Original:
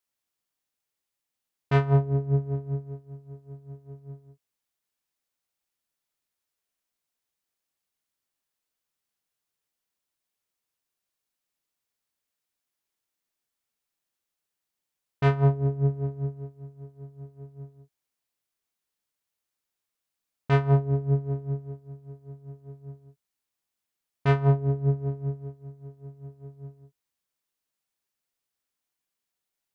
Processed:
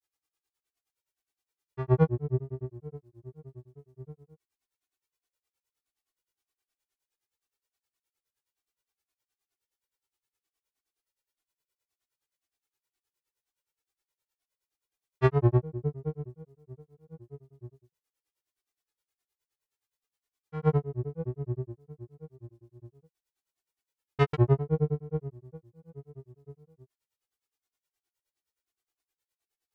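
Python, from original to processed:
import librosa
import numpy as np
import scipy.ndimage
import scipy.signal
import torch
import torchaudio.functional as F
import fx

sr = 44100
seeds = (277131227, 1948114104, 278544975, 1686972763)

y = x + 0.98 * np.pad(x, (int(2.4 * sr / 1000.0), 0))[:len(x)]
y = fx.granulator(y, sr, seeds[0], grain_ms=100.0, per_s=9.6, spray_ms=100.0, spread_st=3)
y = y * 10.0 ** (-1.5 / 20.0)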